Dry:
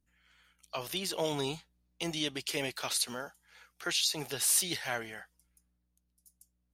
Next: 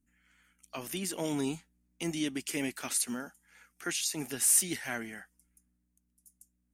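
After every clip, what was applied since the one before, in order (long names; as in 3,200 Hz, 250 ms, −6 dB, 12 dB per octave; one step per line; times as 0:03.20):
graphic EQ with 10 bands 125 Hz −4 dB, 250 Hz +11 dB, 500 Hz −6 dB, 1,000 Hz −4 dB, 2,000 Hz +3 dB, 4,000 Hz −11 dB, 8,000 Hz +6 dB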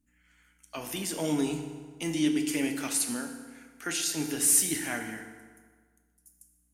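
feedback delay network reverb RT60 1.6 s, low-frequency decay 1×, high-frequency decay 0.7×, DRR 4 dB
level +1.5 dB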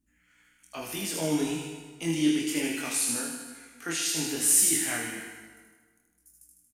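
double-tracking delay 24 ms −8 dB
on a send: delay with a high-pass on its return 77 ms, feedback 62%, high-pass 1,800 Hz, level −3 dB
on the sum: chorus effect 1.1 Hz, delay 18.5 ms, depth 8 ms
level +2.5 dB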